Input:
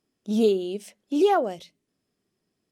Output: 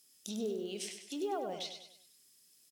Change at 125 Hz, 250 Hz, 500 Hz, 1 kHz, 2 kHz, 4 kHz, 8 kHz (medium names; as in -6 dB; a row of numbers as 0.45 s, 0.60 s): no reading, -15.0 dB, -15.5 dB, -15.5 dB, -13.0 dB, -4.5 dB, +1.0 dB